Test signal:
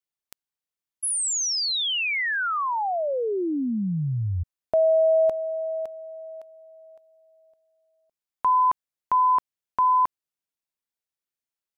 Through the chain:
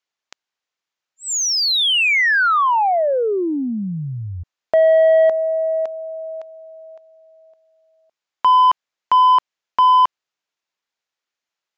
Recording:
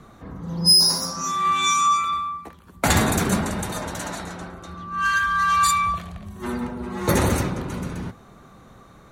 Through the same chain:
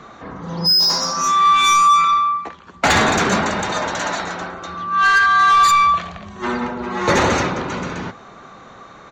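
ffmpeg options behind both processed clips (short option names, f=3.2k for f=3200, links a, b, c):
-filter_complex "[0:a]aresample=16000,aresample=44100,asplit=2[a][b];[b]highpass=f=720:p=1,volume=18dB,asoftclip=type=tanh:threshold=-4.5dB[c];[a][c]amix=inputs=2:normalize=0,lowpass=f=3.7k:p=1,volume=-6dB"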